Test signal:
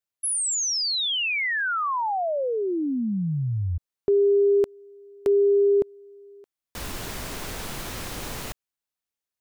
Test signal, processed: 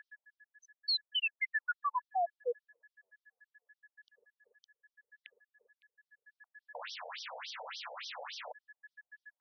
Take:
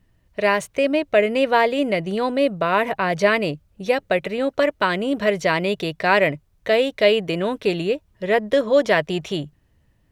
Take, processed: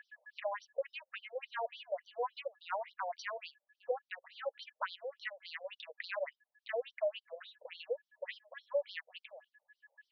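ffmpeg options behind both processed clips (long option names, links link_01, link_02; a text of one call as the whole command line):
ffmpeg -i in.wav -af "aeval=exprs='val(0)+0.00282*sin(2*PI*1700*n/s)':channel_layout=same,acompressor=threshold=-32dB:ratio=8:attack=12:release=923:knee=1:detection=rms,afftfilt=real='re*between(b*sr/1024,610*pow(4400/610,0.5+0.5*sin(2*PI*3.5*pts/sr))/1.41,610*pow(4400/610,0.5+0.5*sin(2*PI*3.5*pts/sr))*1.41)':imag='im*between(b*sr/1024,610*pow(4400/610,0.5+0.5*sin(2*PI*3.5*pts/sr))/1.41,610*pow(4400/610,0.5+0.5*sin(2*PI*3.5*pts/sr))*1.41)':win_size=1024:overlap=0.75,volume=4dB" out.wav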